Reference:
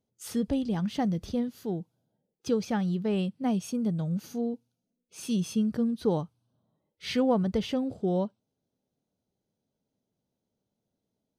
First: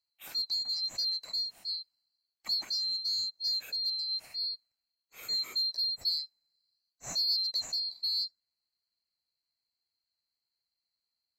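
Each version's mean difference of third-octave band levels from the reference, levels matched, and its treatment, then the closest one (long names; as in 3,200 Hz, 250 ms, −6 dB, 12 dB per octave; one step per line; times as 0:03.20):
15.0 dB: neighbouring bands swapped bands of 4,000 Hz
in parallel at −7 dB: hard clipping −23.5 dBFS, distortion −15 dB
on the sum: level −8 dB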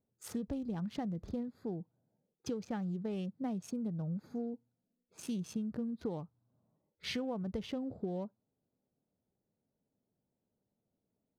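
3.0 dB: adaptive Wiener filter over 15 samples
downward compressor 6 to 1, threshold −33 dBFS, peak gain reduction 12.5 dB
level −2 dB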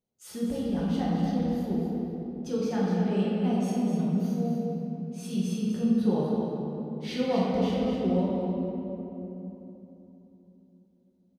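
9.0 dB: on a send: repeating echo 248 ms, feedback 18%, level −8 dB
on the sum: rectangular room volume 170 cubic metres, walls hard, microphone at 1 metre
level −8 dB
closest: second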